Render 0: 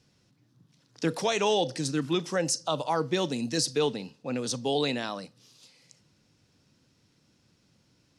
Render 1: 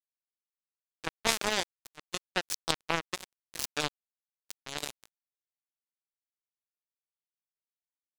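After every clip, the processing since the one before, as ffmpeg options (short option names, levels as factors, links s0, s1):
-af "equalizer=f=150:w=1.3:g=-9.5,acrusher=bits=2:mix=0:aa=0.5,volume=2.37"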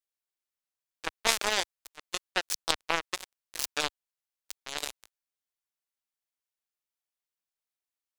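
-af "equalizer=f=150:t=o:w=2:g=-11,volume=1.33"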